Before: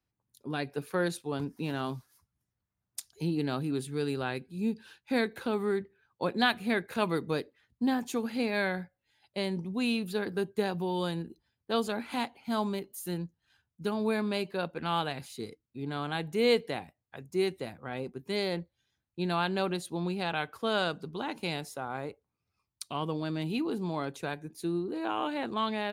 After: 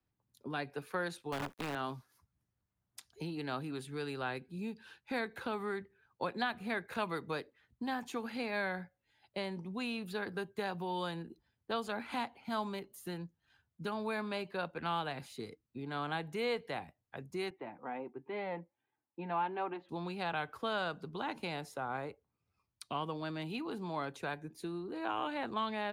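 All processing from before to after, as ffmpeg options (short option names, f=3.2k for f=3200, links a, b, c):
-filter_complex "[0:a]asettb=1/sr,asplit=3[a][b][c];[a]atrim=end=1.324[d];[b]atrim=start=1.32:end=1.75,asetpts=PTS-STARTPTS,afade=t=in:d=0.004:c=qsin,afade=t=out:st=0.426:d=0.004:c=qsin,lowshelf=f=140:g=9.5,acrusher=bits=6:dc=4:mix=0:aa=0.000001[e];[c]atrim=start=1.746[f];[d][e]acrossfade=d=0.004:c1=hsin:c2=qsin[g];[g][f]acrossfade=d=0.004:c1=qsin:c2=hsin,asettb=1/sr,asplit=3[h][i][j];[h]atrim=end=17.504[k];[i]atrim=start=17.5:end=19.89,asetpts=PTS-STARTPTS,afade=t=in:d=0.004:c=qsin,afade=t=out:st=2.386:d=0.004:c=qsin,flanger=delay=2.4:depth=1.8:regen=-39:speed=1.4:shape=sinusoidal,highpass=200,equalizer=f=310:t=q:w=4:g=4,equalizer=f=880:t=q:w=4:g=10,equalizer=f=1.5k:t=q:w=4:g=-3,lowpass=f=2.5k:w=0.5412,lowpass=f=2.5k:w=1.3066[l];[j]atrim=start=19.886[m];[k][l]acrossfade=d=0.004:c1=hsin:c2=qsin[n];[n][m]acrossfade=d=0.004:c1=qsin:c2=hsin,highshelf=f=3.5k:g=-9.5,acrossover=split=150|700|1700|4000[o][p][q][r][s];[o]acompressor=threshold=-55dB:ratio=4[t];[p]acompressor=threshold=-44dB:ratio=4[u];[q]acompressor=threshold=-36dB:ratio=4[v];[r]acompressor=threshold=-46dB:ratio=4[w];[s]acompressor=threshold=-52dB:ratio=4[x];[t][u][v][w][x]amix=inputs=5:normalize=0,volume=1dB"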